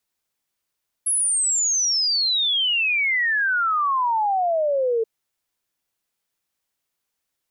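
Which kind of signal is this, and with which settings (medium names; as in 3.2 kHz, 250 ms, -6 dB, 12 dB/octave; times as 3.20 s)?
log sweep 11 kHz -> 440 Hz 3.98 s -18 dBFS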